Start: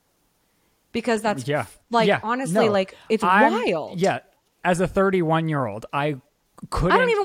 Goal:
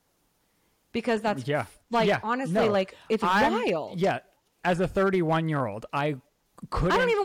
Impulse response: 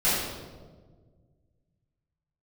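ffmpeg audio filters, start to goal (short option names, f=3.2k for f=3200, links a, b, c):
-filter_complex "[0:a]acrossover=split=4700[a][b];[b]acompressor=threshold=-47dB:ratio=4:attack=1:release=60[c];[a][c]amix=inputs=2:normalize=0,volume=14dB,asoftclip=hard,volume=-14dB,volume=-3.5dB"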